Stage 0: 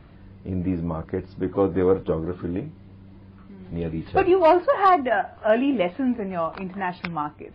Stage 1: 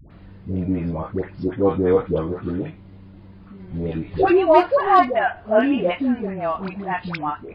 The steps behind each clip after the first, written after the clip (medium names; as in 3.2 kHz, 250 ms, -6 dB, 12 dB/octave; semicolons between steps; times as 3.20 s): phase dispersion highs, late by 107 ms, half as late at 620 Hz; trim +2.5 dB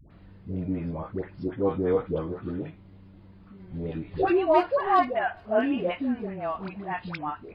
feedback echo behind a high-pass 411 ms, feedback 74%, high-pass 3.4 kHz, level -22 dB; trim -7 dB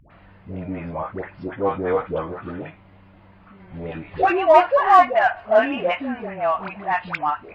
high-order bell 1.3 kHz +11.5 dB 2.7 oct; in parallel at -9 dB: saturation -16.5 dBFS, distortion -5 dB; on the sum: trim -3 dB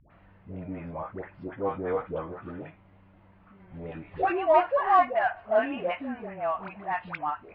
distance through air 220 m; trim -7 dB